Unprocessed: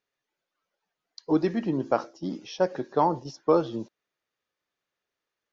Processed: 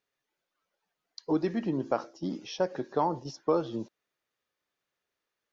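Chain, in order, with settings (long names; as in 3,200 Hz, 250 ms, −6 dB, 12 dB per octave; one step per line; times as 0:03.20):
downward compressor 1.5 to 1, threshold −31 dBFS, peak gain reduction 6 dB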